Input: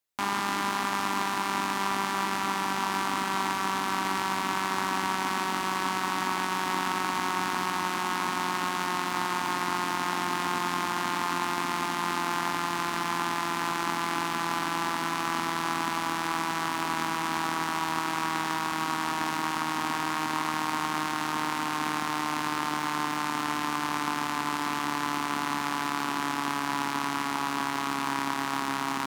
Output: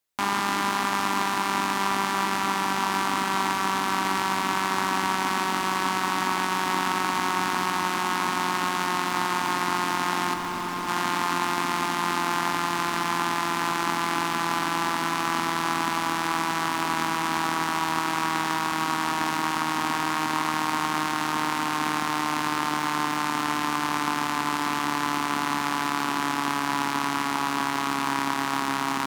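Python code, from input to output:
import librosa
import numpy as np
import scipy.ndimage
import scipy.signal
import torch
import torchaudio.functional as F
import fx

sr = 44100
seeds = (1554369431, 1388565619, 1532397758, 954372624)

y = fx.clip_hard(x, sr, threshold_db=-29.5, at=(10.33, 10.87), fade=0.02)
y = y * 10.0 ** (3.5 / 20.0)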